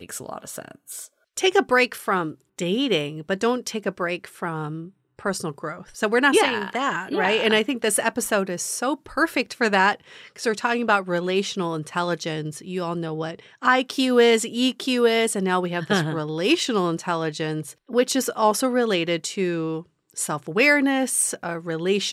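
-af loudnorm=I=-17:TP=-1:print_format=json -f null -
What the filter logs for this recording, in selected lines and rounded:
"input_i" : "-22.6",
"input_tp" : "-5.6",
"input_lra" : "4.1",
"input_thresh" : "-33.0",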